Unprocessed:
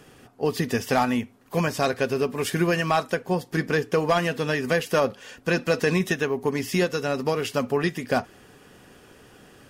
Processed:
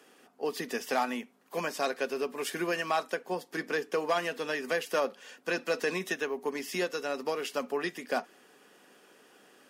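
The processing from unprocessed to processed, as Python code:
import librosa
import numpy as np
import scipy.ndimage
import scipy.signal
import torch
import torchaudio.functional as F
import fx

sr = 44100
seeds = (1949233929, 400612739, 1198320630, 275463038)

y = fx.add_hum(x, sr, base_hz=50, snr_db=27)
y = scipy.signal.sosfilt(scipy.signal.bessel(8, 340.0, 'highpass', norm='mag', fs=sr, output='sos'), y)
y = y * librosa.db_to_amplitude(-6.0)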